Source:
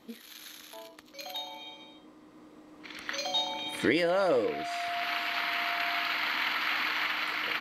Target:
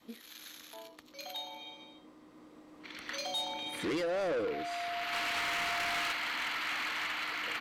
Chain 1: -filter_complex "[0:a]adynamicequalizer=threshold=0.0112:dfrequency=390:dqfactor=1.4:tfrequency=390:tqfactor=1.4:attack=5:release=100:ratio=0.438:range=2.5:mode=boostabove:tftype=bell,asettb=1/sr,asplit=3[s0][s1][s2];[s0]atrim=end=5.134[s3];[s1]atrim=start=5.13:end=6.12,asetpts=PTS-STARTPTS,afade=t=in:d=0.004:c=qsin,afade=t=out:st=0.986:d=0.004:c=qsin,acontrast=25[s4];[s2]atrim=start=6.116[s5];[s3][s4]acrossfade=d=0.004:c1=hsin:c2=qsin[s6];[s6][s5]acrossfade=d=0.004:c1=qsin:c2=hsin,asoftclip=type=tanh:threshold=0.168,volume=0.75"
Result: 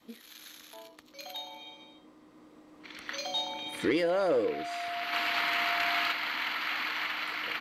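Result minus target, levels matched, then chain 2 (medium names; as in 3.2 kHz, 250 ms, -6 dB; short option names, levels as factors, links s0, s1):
saturation: distortion -13 dB
-filter_complex "[0:a]adynamicequalizer=threshold=0.0112:dfrequency=390:dqfactor=1.4:tfrequency=390:tqfactor=1.4:attack=5:release=100:ratio=0.438:range=2.5:mode=boostabove:tftype=bell,asettb=1/sr,asplit=3[s0][s1][s2];[s0]atrim=end=5.134[s3];[s1]atrim=start=5.13:end=6.12,asetpts=PTS-STARTPTS,afade=t=in:d=0.004:c=qsin,afade=t=out:st=0.986:d=0.004:c=qsin,acontrast=25[s4];[s2]atrim=start=6.116[s5];[s3][s4]acrossfade=d=0.004:c1=hsin:c2=qsin[s6];[s6][s5]acrossfade=d=0.004:c1=qsin:c2=hsin,asoftclip=type=tanh:threshold=0.0422,volume=0.75"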